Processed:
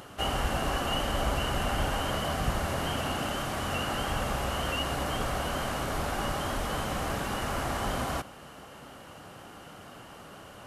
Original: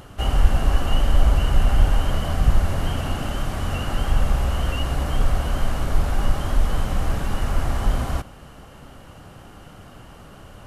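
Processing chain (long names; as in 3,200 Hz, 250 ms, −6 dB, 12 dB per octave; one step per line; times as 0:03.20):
high-pass filter 300 Hz 6 dB per octave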